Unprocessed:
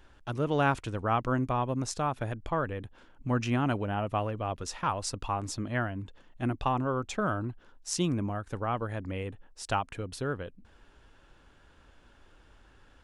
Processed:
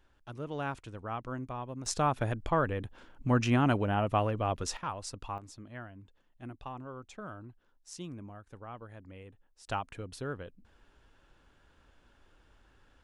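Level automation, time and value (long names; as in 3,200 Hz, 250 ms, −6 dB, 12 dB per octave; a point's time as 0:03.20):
−10 dB
from 0:01.86 +2 dB
from 0:04.77 −7 dB
from 0:05.38 −14 dB
from 0:09.68 −5 dB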